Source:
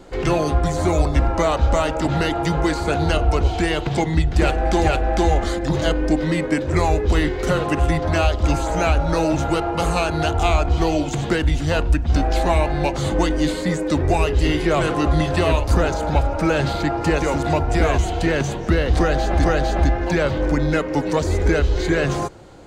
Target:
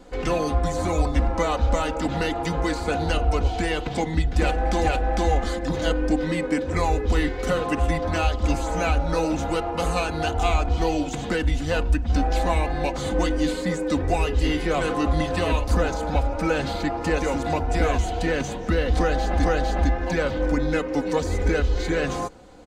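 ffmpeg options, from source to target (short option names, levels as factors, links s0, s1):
-af "aecho=1:1:4:0.57,volume=0.562"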